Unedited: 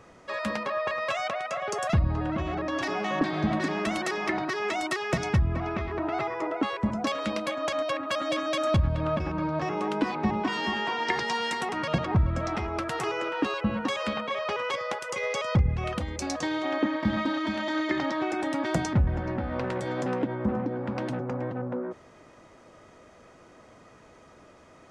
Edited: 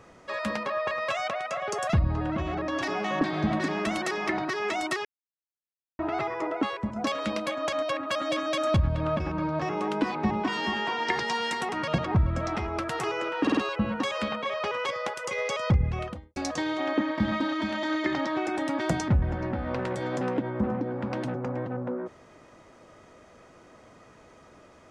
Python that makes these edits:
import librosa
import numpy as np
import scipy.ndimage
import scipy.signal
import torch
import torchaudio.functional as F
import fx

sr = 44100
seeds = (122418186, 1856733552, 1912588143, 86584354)

y = fx.studio_fade_out(x, sr, start_s=15.75, length_s=0.46)
y = fx.edit(y, sr, fx.silence(start_s=5.05, length_s=0.94),
    fx.fade_out_to(start_s=6.66, length_s=0.3, floor_db=-8.0),
    fx.stutter(start_s=13.42, slice_s=0.05, count=4), tone=tone)